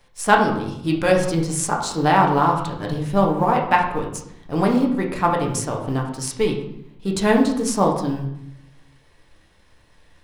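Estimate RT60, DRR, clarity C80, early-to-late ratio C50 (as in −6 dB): 0.75 s, −0.5 dB, 9.5 dB, 6.0 dB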